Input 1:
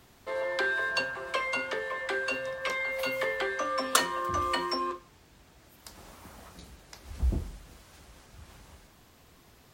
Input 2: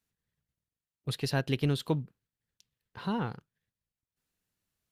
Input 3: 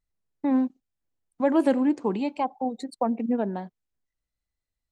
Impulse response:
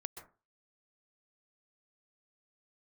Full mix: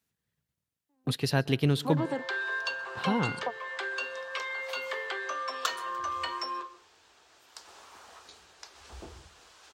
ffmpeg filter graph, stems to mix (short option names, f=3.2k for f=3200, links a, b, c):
-filter_complex "[0:a]equalizer=f=260:t=o:w=2.3:g=-7.5,adelay=1700,volume=1.5dB,asplit=2[a][b];[b]volume=-11dB[c];[1:a]volume=1.5dB,asplit=3[d][e][f];[e]volume=-10dB[g];[2:a]adelay=450,volume=3dB[h];[f]apad=whole_len=236781[i];[h][i]sidechaingate=range=-49dB:threshold=-55dB:ratio=16:detection=peak[j];[a][j]amix=inputs=2:normalize=0,highpass=380,equalizer=f=410:t=q:w=4:g=4,equalizer=f=580:t=q:w=4:g=-5,equalizer=f=2.1k:t=q:w=4:g=-6,lowpass=f=8.9k:w=0.5412,lowpass=f=8.9k:w=1.3066,acompressor=threshold=-37dB:ratio=2,volume=0dB[k];[3:a]atrim=start_sample=2205[l];[c][g]amix=inputs=2:normalize=0[m];[m][l]afir=irnorm=-1:irlink=0[n];[d][k][n]amix=inputs=3:normalize=0,highpass=75"